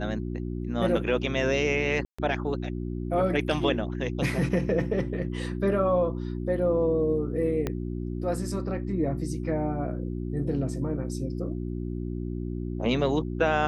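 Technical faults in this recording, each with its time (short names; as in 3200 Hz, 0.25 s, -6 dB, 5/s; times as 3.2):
hum 60 Hz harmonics 6 -32 dBFS
2.05–2.19 gap 0.135 s
7.67 pop -15 dBFS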